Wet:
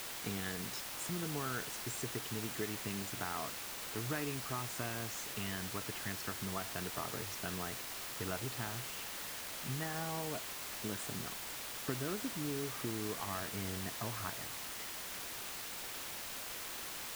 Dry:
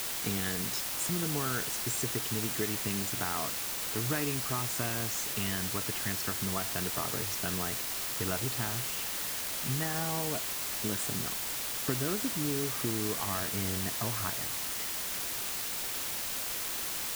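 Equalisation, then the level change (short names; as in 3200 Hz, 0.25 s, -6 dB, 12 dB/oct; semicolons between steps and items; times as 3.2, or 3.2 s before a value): low shelf 390 Hz -3 dB; high shelf 4000 Hz -6.5 dB; -4.0 dB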